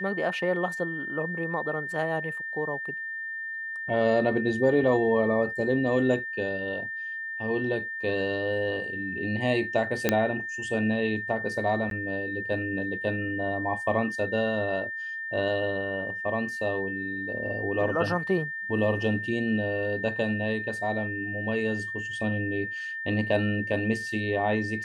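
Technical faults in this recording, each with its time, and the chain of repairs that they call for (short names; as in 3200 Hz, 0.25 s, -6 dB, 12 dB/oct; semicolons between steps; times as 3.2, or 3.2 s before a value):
tone 1800 Hz -32 dBFS
10.09 pop -7 dBFS
11.9–11.91 gap 12 ms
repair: de-click; notch 1800 Hz, Q 30; interpolate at 11.9, 12 ms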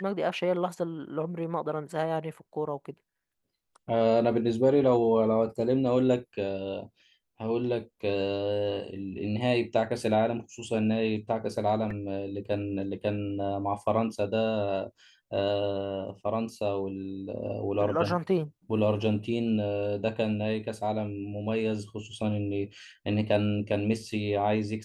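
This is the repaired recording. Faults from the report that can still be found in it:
none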